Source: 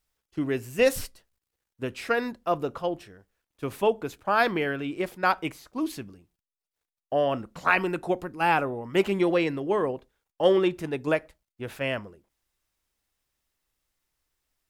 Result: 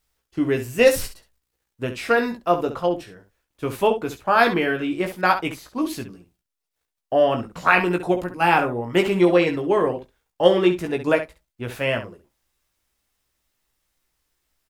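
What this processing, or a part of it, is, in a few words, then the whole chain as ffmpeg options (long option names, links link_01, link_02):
slapback doubling: -filter_complex "[0:a]asplit=3[link_01][link_02][link_03];[link_02]adelay=17,volume=-5.5dB[link_04];[link_03]adelay=67,volume=-10.5dB[link_05];[link_01][link_04][link_05]amix=inputs=3:normalize=0,volume=4.5dB"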